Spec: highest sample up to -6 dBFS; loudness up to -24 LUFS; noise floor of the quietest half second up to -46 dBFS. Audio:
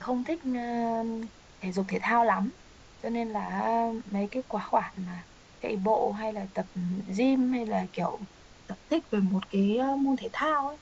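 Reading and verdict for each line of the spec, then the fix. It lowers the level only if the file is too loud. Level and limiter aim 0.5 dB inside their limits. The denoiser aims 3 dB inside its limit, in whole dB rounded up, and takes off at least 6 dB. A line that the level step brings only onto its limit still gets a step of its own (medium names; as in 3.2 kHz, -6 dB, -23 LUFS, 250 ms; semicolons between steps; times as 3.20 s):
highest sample -12.0 dBFS: pass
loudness -29.5 LUFS: pass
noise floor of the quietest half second -53 dBFS: pass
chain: none needed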